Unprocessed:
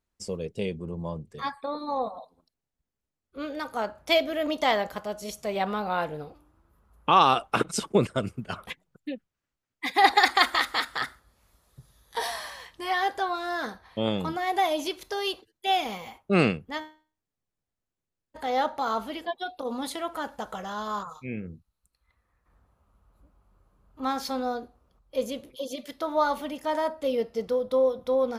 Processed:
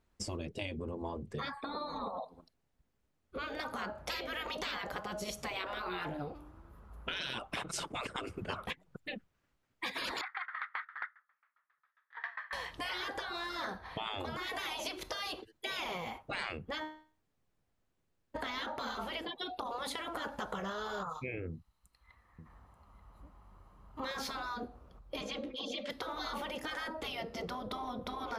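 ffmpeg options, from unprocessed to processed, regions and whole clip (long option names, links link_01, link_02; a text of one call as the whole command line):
ffmpeg -i in.wav -filter_complex "[0:a]asettb=1/sr,asplit=3[link_01][link_02][link_03];[link_01]atrim=end=10.214[link_04];[link_02]atrim=start=10.21:end=12.53,asetpts=PTS-STARTPTS,afade=type=in:duration=0.004:curve=qsin,afade=type=out:start_time=2.316:duration=0.004:curve=qsin,asuperpass=centerf=1600:order=4:qfactor=1.8,aeval=exprs='val(0)*pow(10,-26*if(lt(mod(7.4*n/s,1),2*abs(7.4)/1000),1-mod(7.4*n/s,1)/(2*abs(7.4)/1000),(mod(7.4*n/s,1)-2*abs(7.4)/1000)/(1-2*abs(7.4)/1000))/20)':channel_layout=same[link_05];[link_03]atrim=start=12.526[link_06];[link_04][link_05]acrossfade=duration=0.004:curve1=hsin:curve2=qsin[link_07];[link_07][link_06]acrossfade=duration=0.004:curve1=qsin:curve2=hsin,asettb=1/sr,asplit=3[link_08][link_09][link_10];[link_08]atrim=end=21.504[link_11];[link_09]atrim=start=21.5:end=24.11,asetpts=PTS-STARTPTS,afade=type=in:duration=0.004:curve=qsin,afade=type=out:start_time=2.606:duration=0.004:curve=qsin,lowshelf=frequency=340:gain=-7,aecho=1:1:1:0.34,atrim=end_sample=115101,aecho=1:1:885:0.211,atrim=end_sample=115101[link_12];[link_10]atrim=start=24.106[link_13];[link_11][link_12]acrossfade=duration=0.004:curve1=hsin:curve2=qsin[link_14];[link_14][link_13]acrossfade=duration=0.004:curve1=qsin:curve2=hsin,asettb=1/sr,asplit=3[link_15][link_16][link_17];[link_15]atrim=end=25.214[link_18];[link_16]atrim=start=25.21:end=25.9,asetpts=PTS-STARTPTS,afade=type=in:duration=0.004:curve=qsin,afade=type=out:start_time=0.686:duration=0.004:curve=qsin,lowpass=4500,lowshelf=frequency=120:gain=-8.5,aecho=1:1:3.7:0.8,atrim=end_sample=30429[link_19];[link_17]atrim=start=25.896[link_20];[link_18][link_19]acrossfade=duration=0.004:curve1=hsin:curve2=qsin[link_21];[link_21][link_20]acrossfade=duration=0.004:curve1=qsin:curve2=hsin,afftfilt=real='re*lt(hypot(re,im),0.0891)':imag='im*lt(hypot(re,im),0.0891)':win_size=1024:overlap=0.75,highshelf=frequency=4500:gain=-10.5,acompressor=threshold=-46dB:ratio=4,volume=9dB" out.wav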